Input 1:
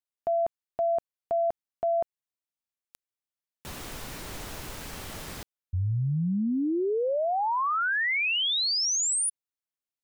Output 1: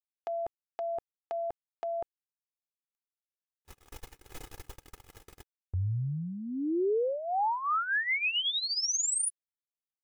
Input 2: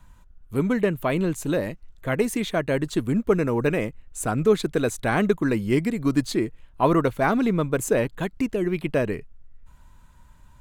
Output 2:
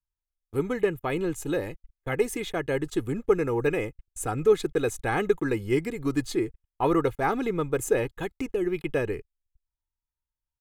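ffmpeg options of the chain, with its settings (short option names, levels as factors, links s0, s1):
-af "agate=range=0.0112:threshold=0.0141:ratio=16:release=56:detection=rms,equalizer=f=4300:w=3.8:g=-3.5,aecho=1:1:2.4:0.58,volume=0.596"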